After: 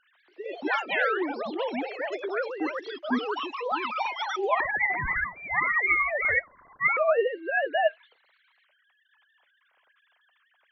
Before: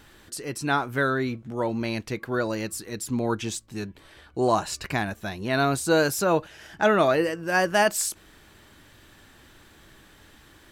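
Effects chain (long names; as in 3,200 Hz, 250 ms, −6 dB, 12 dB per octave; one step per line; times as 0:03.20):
three sine waves on the formant tracks
flanger 1.2 Hz, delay 1.5 ms, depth 3.9 ms, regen −82%
delay with pitch and tempo change per echo 140 ms, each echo +4 semitones, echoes 3
0:04.60–0:06.97: voice inversion scrambler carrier 2,700 Hz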